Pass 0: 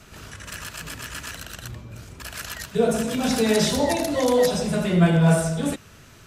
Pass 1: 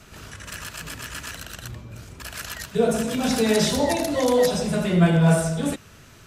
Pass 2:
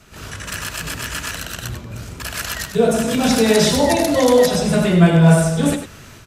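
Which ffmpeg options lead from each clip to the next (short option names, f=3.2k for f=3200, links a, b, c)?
-af anull
-af "dynaudnorm=f=110:g=3:m=9dB,aecho=1:1:98:0.316,volume=-1dB"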